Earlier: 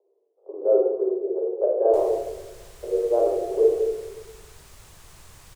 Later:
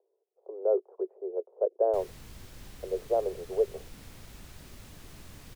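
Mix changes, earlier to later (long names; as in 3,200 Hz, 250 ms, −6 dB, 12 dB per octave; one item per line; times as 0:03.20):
background: add octave-band graphic EQ 250/1,000/8,000 Hz +11/−5/−6 dB
reverb: off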